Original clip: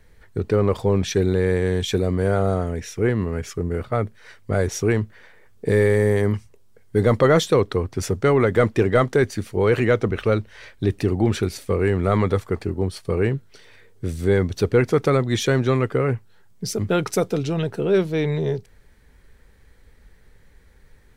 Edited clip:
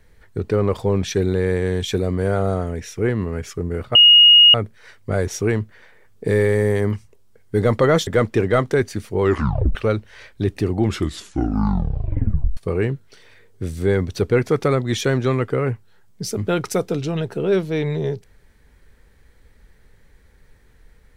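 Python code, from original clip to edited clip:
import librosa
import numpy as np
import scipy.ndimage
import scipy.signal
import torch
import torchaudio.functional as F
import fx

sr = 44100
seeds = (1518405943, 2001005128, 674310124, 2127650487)

y = fx.edit(x, sr, fx.insert_tone(at_s=3.95, length_s=0.59, hz=2870.0, db=-6.0),
    fx.cut(start_s=7.48, length_s=1.01),
    fx.tape_stop(start_s=9.63, length_s=0.54),
    fx.tape_stop(start_s=11.22, length_s=1.77), tone=tone)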